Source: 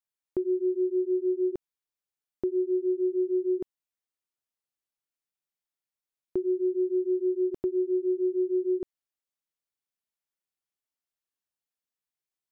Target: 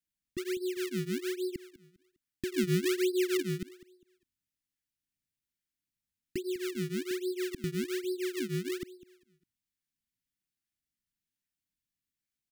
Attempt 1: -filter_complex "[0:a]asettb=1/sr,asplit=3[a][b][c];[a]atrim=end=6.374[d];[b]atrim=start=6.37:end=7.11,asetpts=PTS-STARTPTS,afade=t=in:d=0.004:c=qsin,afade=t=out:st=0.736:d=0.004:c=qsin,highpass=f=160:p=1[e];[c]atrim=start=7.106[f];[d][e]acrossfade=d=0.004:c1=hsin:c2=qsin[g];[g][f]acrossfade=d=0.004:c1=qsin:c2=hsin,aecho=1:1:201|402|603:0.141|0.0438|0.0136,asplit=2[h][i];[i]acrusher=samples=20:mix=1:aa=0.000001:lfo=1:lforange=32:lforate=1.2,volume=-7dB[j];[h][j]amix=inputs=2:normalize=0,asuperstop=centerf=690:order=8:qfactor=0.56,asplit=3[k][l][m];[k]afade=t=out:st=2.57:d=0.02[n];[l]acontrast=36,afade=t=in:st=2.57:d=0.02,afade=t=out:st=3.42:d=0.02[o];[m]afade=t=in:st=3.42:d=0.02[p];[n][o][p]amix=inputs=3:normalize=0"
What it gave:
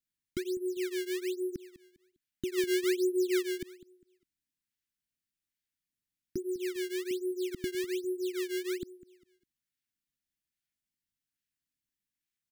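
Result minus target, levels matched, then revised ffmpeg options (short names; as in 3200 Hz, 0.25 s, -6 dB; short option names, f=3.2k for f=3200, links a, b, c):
decimation with a swept rate: distortion -11 dB
-filter_complex "[0:a]asettb=1/sr,asplit=3[a][b][c];[a]atrim=end=6.374[d];[b]atrim=start=6.37:end=7.11,asetpts=PTS-STARTPTS,afade=t=in:d=0.004:c=qsin,afade=t=out:st=0.736:d=0.004:c=qsin,highpass=f=160:p=1[e];[c]atrim=start=7.106[f];[d][e]acrossfade=d=0.004:c1=hsin:c2=qsin[g];[g][f]acrossfade=d=0.004:c1=qsin:c2=hsin,aecho=1:1:201|402|603:0.141|0.0438|0.0136,asplit=2[h][i];[i]acrusher=samples=47:mix=1:aa=0.000001:lfo=1:lforange=75.2:lforate=1.2,volume=-7dB[j];[h][j]amix=inputs=2:normalize=0,asuperstop=centerf=690:order=8:qfactor=0.56,asplit=3[k][l][m];[k]afade=t=out:st=2.57:d=0.02[n];[l]acontrast=36,afade=t=in:st=2.57:d=0.02,afade=t=out:st=3.42:d=0.02[o];[m]afade=t=in:st=3.42:d=0.02[p];[n][o][p]amix=inputs=3:normalize=0"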